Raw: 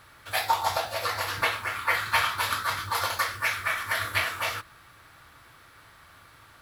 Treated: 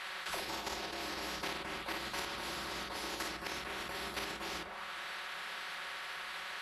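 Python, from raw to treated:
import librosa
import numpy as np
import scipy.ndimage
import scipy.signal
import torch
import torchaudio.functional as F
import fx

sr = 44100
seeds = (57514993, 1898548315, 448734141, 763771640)

y = fx.high_shelf(x, sr, hz=3700.0, db=2.5)
y = fx.hum_notches(y, sr, base_hz=60, count=6)
y = y + 0.93 * np.pad(y, (int(3.3 * sr / 1000.0), 0))[:len(y)]
y = fx.pitch_keep_formants(y, sr, semitones=-8.5)
y = fx.level_steps(y, sr, step_db=11)
y = fx.auto_wah(y, sr, base_hz=320.0, top_hz=2000.0, q=5.8, full_db=-31.0, direction='down')
y = fx.room_early_taps(y, sr, ms=(30, 53), db=(-5.5, -4.0))
y = fx.spectral_comp(y, sr, ratio=4.0)
y = y * librosa.db_to_amplitude(9.0)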